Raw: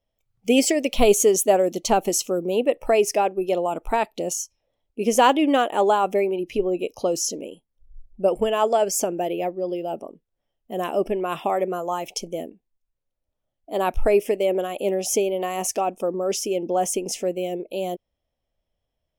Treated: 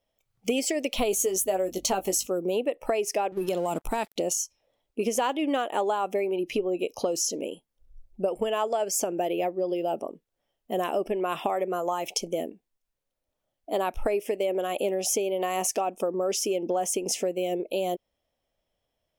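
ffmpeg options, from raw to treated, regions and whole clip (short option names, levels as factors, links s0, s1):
-filter_complex "[0:a]asettb=1/sr,asplit=3[s0][s1][s2];[s0]atrim=end=1.114[s3];[s1]atrim=start=1.11:end=2.27,asetpts=PTS-STARTPTS,afade=t=in:d=0.004:c=qsin,afade=t=out:st=1.156:d=0.004:c=qsin,highshelf=f=10000:g=8.5,aeval=exprs='val(0)+0.00631*(sin(2*PI*50*n/s)+sin(2*PI*2*50*n/s)/2+sin(2*PI*3*50*n/s)/3+sin(2*PI*4*50*n/s)/4+sin(2*PI*5*50*n/s)/5)':c=same,asplit=2[s4][s5];[s5]adelay=16,volume=0.473[s6];[s4][s6]amix=inputs=2:normalize=0,atrim=end_sample=51156[s7];[s2]atrim=start=2.266[s8];[s3][s7]acrossfade=d=0.004:c1=hsin:c2=qsin[s9];[s9][s8]acrossfade=d=0.004:c1=qsin:c2=hsin,asettb=1/sr,asplit=3[s10][s11][s12];[s10]atrim=end=3.324[s13];[s11]atrim=start=3.32:end=4.16,asetpts=PTS-STARTPTS,afade=t=in:d=0.004:c=qsin,afade=t=out:st=0.836:d=0.004:c=qsin,bass=f=250:g=12,treble=f=4000:g=10,acompressor=threshold=0.0794:ratio=4:attack=3.2:release=140:knee=1:detection=peak,aeval=exprs='sgn(val(0))*max(abs(val(0))-0.00376,0)':c=same[s14];[s12]atrim=start=4.156[s15];[s13][s14]acrossfade=d=0.004:c1=hsin:c2=qsin[s16];[s16][s15]acrossfade=d=0.004:c1=qsin:c2=hsin,lowshelf=f=150:g=-10.5,acompressor=threshold=0.0398:ratio=6,volume=1.58"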